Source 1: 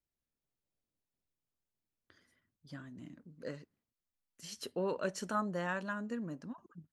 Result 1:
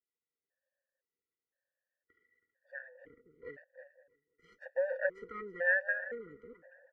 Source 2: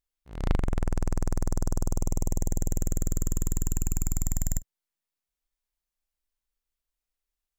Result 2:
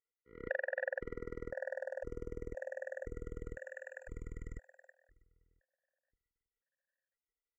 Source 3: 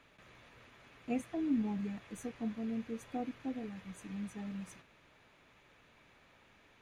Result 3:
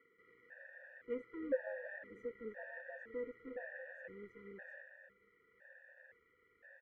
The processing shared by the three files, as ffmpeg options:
ffmpeg -i in.wav -filter_complex "[0:a]lowpass=8700,asplit=2[link_01][link_02];[link_02]aecho=0:1:324|648:0.2|0.0359[link_03];[link_01][link_03]amix=inputs=2:normalize=0,aeval=exprs='max(val(0),0)':channel_layout=same,firequalizer=gain_entry='entry(780,0);entry(1700,13);entry(2500,-14)':delay=0.05:min_phase=1,asplit=2[link_04][link_05];[link_05]adelay=522,lowpass=frequency=1600:poles=1,volume=-24dB,asplit=2[link_06][link_07];[link_07]adelay=522,lowpass=frequency=1600:poles=1,volume=0.43,asplit=2[link_08][link_09];[link_09]adelay=522,lowpass=frequency=1600:poles=1,volume=0.43[link_10];[link_06][link_08][link_10]amix=inputs=3:normalize=0[link_11];[link_04][link_11]amix=inputs=2:normalize=0,asubboost=boost=5.5:cutoff=80,asplit=3[link_12][link_13][link_14];[link_12]bandpass=frequency=530:width_type=q:width=8,volume=0dB[link_15];[link_13]bandpass=frequency=1840:width_type=q:width=8,volume=-6dB[link_16];[link_14]bandpass=frequency=2480:width_type=q:width=8,volume=-9dB[link_17];[link_15][link_16][link_17]amix=inputs=3:normalize=0,afftfilt=real='re*gt(sin(2*PI*0.98*pts/sr)*(1-2*mod(floor(b*sr/1024/480),2)),0)':imag='im*gt(sin(2*PI*0.98*pts/sr)*(1-2*mod(floor(b*sr/1024/480),2)),0)':win_size=1024:overlap=0.75,volume=15dB" out.wav

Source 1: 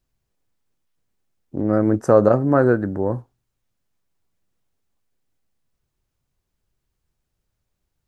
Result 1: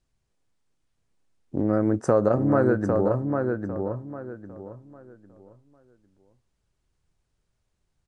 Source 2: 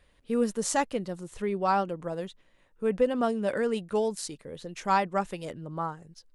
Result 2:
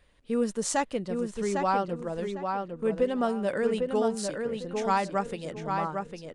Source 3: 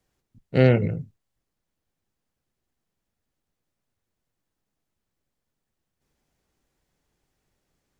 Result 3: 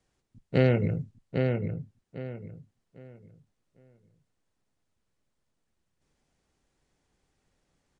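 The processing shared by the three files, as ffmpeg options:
ffmpeg -i in.wav -filter_complex "[0:a]acompressor=threshold=-21dB:ratio=2,aresample=22050,aresample=44100,asplit=2[link_01][link_02];[link_02]adelay=802,lowpass=frequency=3400:poles=1,volume=-4.5dB,asplit=2[link_03][link_04];[link_04]adelay=802,lowpass=frequency=3400:poles=1,volume=0.28,asplit=2[link_05][link_06];[link_06]adelay=802,lowpass=frequency=3400:poles=1,volume=0.28,asplit=2[link_07][link_08];[link_08]adelay=802,lowpass=frequency=3400:poles=1,volume=0.28[link_09];[link_01][link_03][link_05][link_07][link_09]amix=inputs=5:normalize=0" out.wav

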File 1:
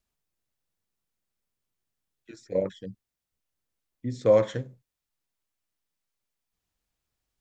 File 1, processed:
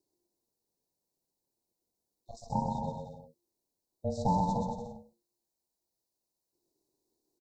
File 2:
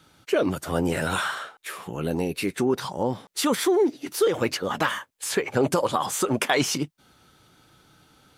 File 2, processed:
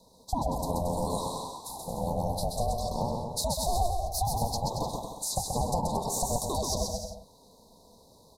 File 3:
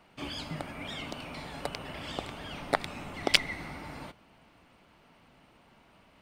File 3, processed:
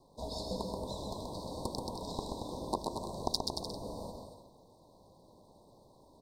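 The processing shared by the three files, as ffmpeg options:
ffmpeg -i in.wav -af "acompressor=threshold=-28dB:ratio=3,aeval=exprs='val(0)*sin(2*PI*350*n/s)':channel_layout=same,asuperstop=centerf=2000:order=20:qfactor=0.72,aecho=1:1:130|227.5|300.6|355.5|396.6:0.631|0.398|0.251|0.158|0.1,volume=2.5dB" out.wav

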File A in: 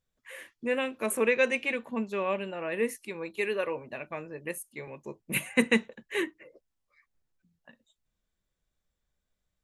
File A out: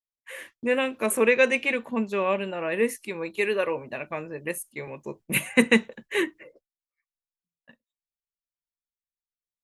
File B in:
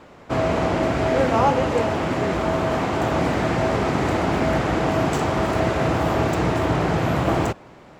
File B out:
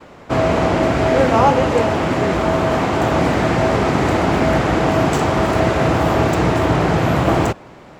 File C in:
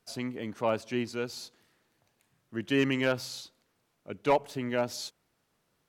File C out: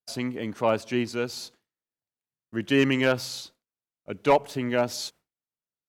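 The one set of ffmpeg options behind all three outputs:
ffmpeg -i in.wav -af "agate=range=-33dB:threshold=-49dB:ratio=3:detection=peak,volume=5dB" out.wav

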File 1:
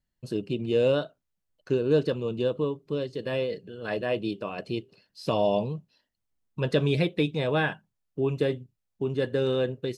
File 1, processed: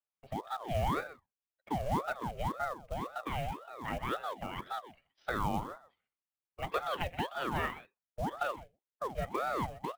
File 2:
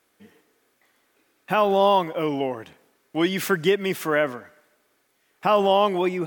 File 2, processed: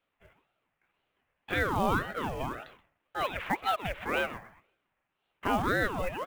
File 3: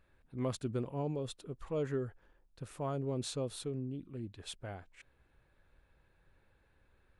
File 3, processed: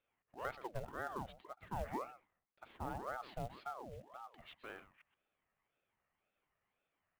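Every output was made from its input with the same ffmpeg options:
ffmpeg -i in.wav -filter_complex "[0:a]agate=range=-8dB:threshold=-53dB:ratio=16:detection=peak,highpass=frequency=290:width_type=q:width=0.5412,highpass=frequency=290:width_type=q:width=1.307,lowpass=frequency=2800:width_type=q:width=0.5176,lowpass=frequency=2800:width_type=q:width=0.7071,lowpass=frequency=2800:width_type=q:width=1.932,afreqshift=-100,asplit=2[link_01][link_02];[link_02]acompressor=threshold=-32dB:ratio=16,volume=1dB[link_03];[link_01][link_03]amix=inputs=2:normalize=0,highshelf=frequency=2100:gain=5,acrusher=bits=5:mode=log:mix=0:aa=0.000001,aecho=1:1:126:0.178,aeval=exprs='val(0)*sin(2*PI*660*n/s+660*0.6/1.9*sin(2*PI*1.9*n/s))':channel_layout=same,volume=-8dB" out.wav

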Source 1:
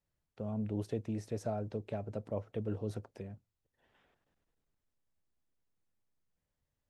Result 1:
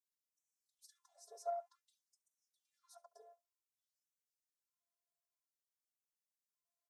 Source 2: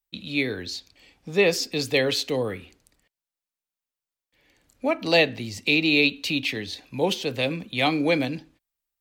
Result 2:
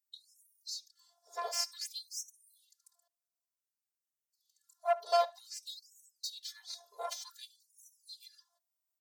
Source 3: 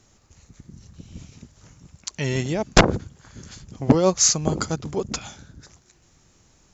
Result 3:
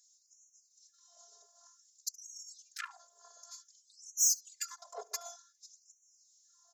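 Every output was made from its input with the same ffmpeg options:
ffmpeg -i in.wav -af "asuperstop=centerf=2400:order=4:qfactor=0.64,afftfilt=real='hypot(re,im)*cos(PI*b)':imag='0':win_size=512:overlap=0.75,aeval=exprs='(tanh(15.8*val(0)+0.65)-tanh(0.65))/15.8':channel_layout=same,aecho=1:1:70:0.0668,afftfilt=real='re*gte(b*sr/1024,400*pow(5600/400,0.5+0.5*sin(2*PI*0.54*pts/sr)))':imag='im*gte(b*sr/1024,400*pow(5600/400,0.5+0.5*sin(2*PI*0.54*pts/sr)))':win_size=1024:overlap=0.75,volume=4.5dB" out.wav

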